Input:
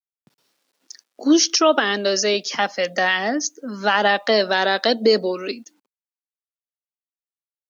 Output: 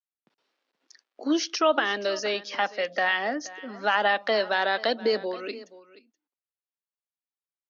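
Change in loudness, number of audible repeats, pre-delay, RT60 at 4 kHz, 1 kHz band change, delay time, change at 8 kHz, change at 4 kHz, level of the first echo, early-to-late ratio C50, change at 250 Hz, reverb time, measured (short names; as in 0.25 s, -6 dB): -7.0 dB, 1, none, none, -5.0 dB, 0.476 s, n/a, -8.5 dB, -18.5 dB, none, -9.5 dB, none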